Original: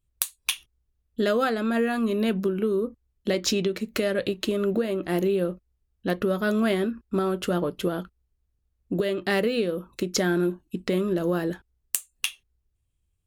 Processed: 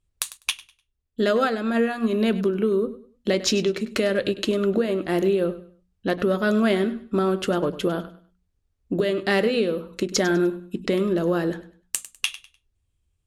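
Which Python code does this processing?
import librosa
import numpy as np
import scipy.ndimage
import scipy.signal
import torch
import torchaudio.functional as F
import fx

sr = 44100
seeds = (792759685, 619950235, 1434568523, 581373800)

y = scipy.signal.sosfilt(scipy.signal.butter(2, 9300.0, 'lowpass', fs=sr, output='sos'), x)
y = fx.hum_notches(y, sr, base_hz=60, count=4)
y = fx.echo_feedback(y, sr, ms=100, feedback_pct=27, wet_db=-15.5)
y = fx.upward_expand(y, sr, threshold_db=-34.0, expansion=1.5, at=(0.37, 2.13))
y = y * 10.0 ** (3.0 / 20.0)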